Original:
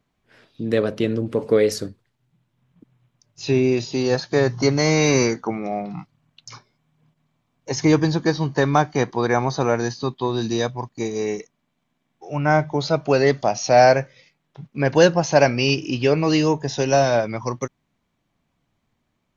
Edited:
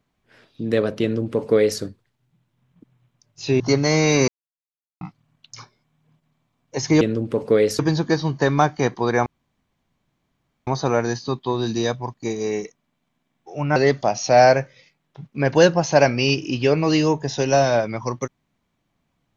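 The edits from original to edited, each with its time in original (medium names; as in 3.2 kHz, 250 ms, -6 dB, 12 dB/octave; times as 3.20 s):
1.02–1.80 s: copy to 7.95 s
3.60–4.54 s: delete
5.22–5.95 s: mute
9.42 s: insert room tone 1.41 s
12.51–13.16 s: delete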